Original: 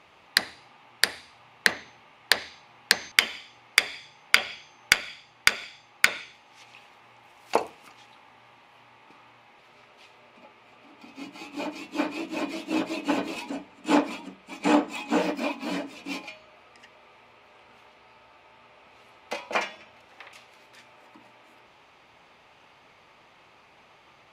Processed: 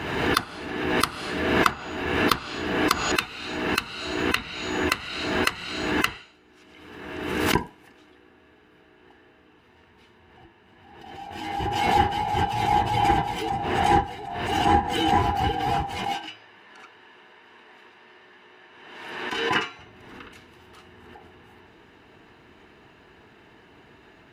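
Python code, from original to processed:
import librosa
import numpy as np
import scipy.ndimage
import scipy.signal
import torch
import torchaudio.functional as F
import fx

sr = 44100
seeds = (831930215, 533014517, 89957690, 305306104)

y = fx.band_swap(x, sr, width_hz=500)
y = fx.weighting(y, sr, curve='A', at=(16.14, 19.79))
y = fx.rider(y, sr, range_db=4, speed_s=0.5)
y = scipy.signal.sosfilt(scipy.signal.butter(2, 47.0, 'highpass', fs=sr, output='sos'), y)
y = fx.peak_eq(y, sr, hz=5500.0, db=-9.5, octaves=2.9)
y = fx.pre_swell(y, sr, db_per_s=38.0)
y = y * librosa.db_to_amplitude(4.0)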